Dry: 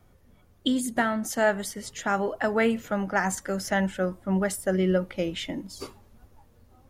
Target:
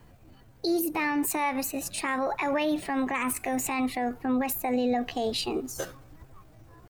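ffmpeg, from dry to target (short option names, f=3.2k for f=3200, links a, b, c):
-af "asetrate=58866,aresample=44100,atempo=0.749154,alimiter=limit=-23.5dB:level=0:latency=1:release=75,volume=4.5dB"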